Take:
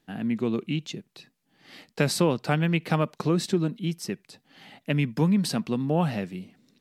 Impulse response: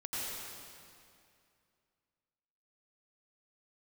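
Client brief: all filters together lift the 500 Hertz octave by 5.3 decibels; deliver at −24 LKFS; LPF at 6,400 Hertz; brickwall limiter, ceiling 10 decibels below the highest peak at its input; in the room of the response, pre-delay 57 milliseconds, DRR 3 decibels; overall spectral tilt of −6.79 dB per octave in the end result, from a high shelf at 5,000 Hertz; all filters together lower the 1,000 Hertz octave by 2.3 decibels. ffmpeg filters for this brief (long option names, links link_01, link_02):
-filter_complex "[0:a]lowpass=6400,equalizer=frequency=500:width_type=o:gain=8,equalizer=frequency=1000:width_type=o:gain=-6.5,highshelf=frequency=5000:gain=-5.5,alimiter=limit=-17dB:level=0:latency=1,asplit=2[link_01][link_02];[1:a]atrim=start_sample=2205,adelay=57[link_03];[link_02][link_03]afir=irnorm=-1:irlink=0,volume=-6.5dB[link_04];[link_01][link_04]amix=inputs=2:normalize=0,volume=3dB"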